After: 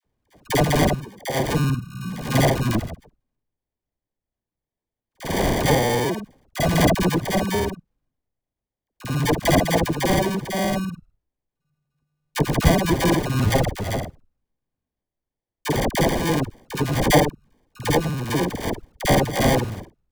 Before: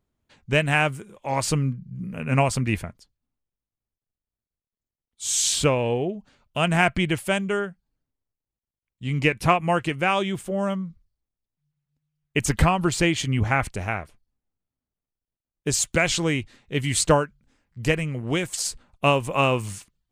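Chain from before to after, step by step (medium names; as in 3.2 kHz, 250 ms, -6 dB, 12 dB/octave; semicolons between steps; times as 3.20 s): time reversed locally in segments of 50 ms; sample-and-hold 33×; phase dispersion lows, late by 48 ms, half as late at 760 Hz; trim +3 dB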